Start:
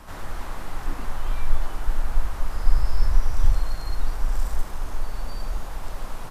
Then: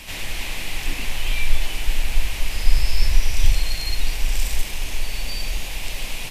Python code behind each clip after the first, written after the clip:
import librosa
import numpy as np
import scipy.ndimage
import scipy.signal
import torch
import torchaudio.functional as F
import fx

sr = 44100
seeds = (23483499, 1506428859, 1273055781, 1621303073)

y = fx.high_shelf_res(x, sr, hz=1800.0, db=11.0, q=3.0)
y = y * librosa.db_to_amplitude(2.0)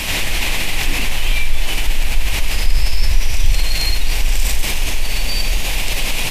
y = fx.env_flatten(x, sr, amount_pct=50)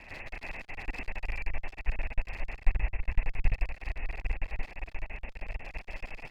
y = scipy.signal.sosfilt(scipy.signal.cheby1(6, 6, 2700.0, 'lowpass', fs=sr, output='sos'), x)
y = fx.clip_asym(y, sr, top_db=-31.0, bottom_db=-7.5)
y = fx.upward_expand(y, sr, threshold_db=-29.0, expansion=2.5)
y = y * librosa.db_to_amplitude(1.5)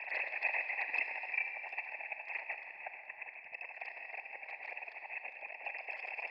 y = fx.envelope_sharpen(x, sr, power=2.0)
y = scipy.signal.sosfilt(scipy.signal.butter(4, 530.0, 'highpass', fs=sr, output='sos'), y)
y = fx.rev_schroeder(y, sr, rt60_s=3.3, comb_ms=29, drr_db=6.0)
y = y * librosa.db_to_amplitude(9.0)